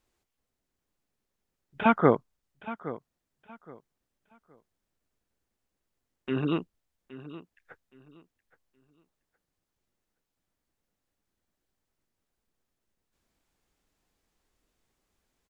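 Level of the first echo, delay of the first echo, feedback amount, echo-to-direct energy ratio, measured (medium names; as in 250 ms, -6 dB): -15.5 dB, 819 ms, 25%, -15.0 dB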